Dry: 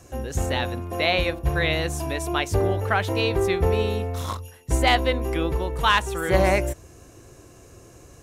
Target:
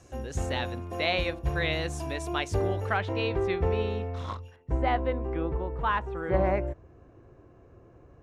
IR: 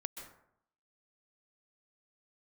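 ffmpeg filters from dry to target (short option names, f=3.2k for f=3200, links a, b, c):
-af "asetnsamples=n=441:p=0,asendcmd='2.97 lowpass f 3300;4.56 lowpass f 1400',lowpass=8k,volume=-5.5dB"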